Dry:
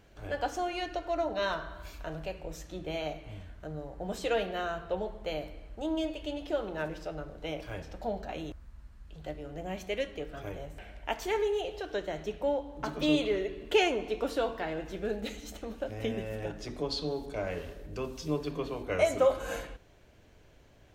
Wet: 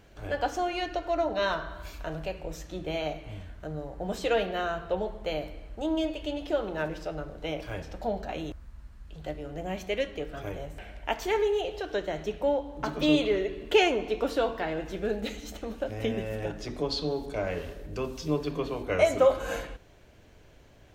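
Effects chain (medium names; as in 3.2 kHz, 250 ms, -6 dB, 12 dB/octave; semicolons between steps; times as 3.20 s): dynamic bell 9.7 kHz, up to -4 dB, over -57 dBFS, Q 1; trim +3.5 dB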